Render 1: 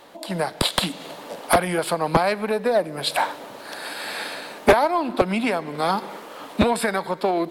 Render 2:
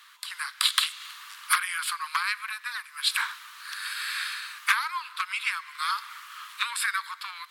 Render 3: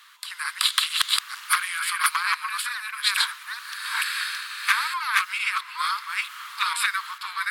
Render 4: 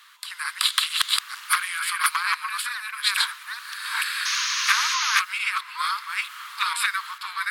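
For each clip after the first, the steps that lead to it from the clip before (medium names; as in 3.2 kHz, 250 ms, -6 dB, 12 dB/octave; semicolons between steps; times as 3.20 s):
steep high-pass 1.1 kHz 72 dB/octave
chunks repeated in reverse 449 ms, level -0.5 dB; trim +1.5 dB
painted sound noise, 4.25–5.20 s, 970–6800 Hz -26 dBFS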